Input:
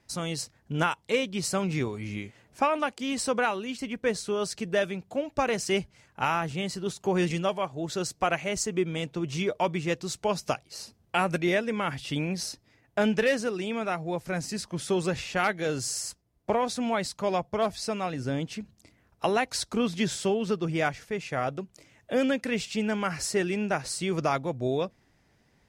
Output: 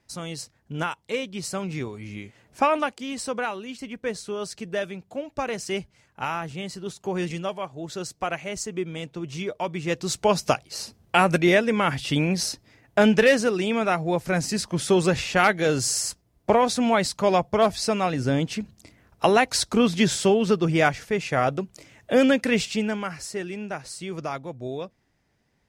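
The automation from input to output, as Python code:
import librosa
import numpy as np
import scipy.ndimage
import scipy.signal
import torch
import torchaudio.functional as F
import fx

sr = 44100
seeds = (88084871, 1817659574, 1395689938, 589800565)

y = fx.gain(x, sr, db=fx.line((2.14, -2.0), (2.73, 5.0), (3.07, -2.0), (9.7, -2.0), (10.13, 7.0), (22.61, 7.0), (23.21, -4.5)))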